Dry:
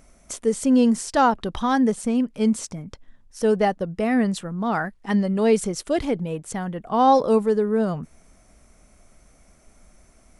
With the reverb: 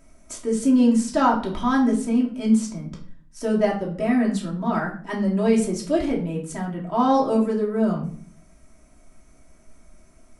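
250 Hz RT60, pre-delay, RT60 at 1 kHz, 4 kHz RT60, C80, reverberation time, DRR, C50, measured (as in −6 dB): 0.85 s, 3 ms, 0.45 s, 0.35 s, 13.0 dB, 0.50 s, −3.5 dB, 9.0 dB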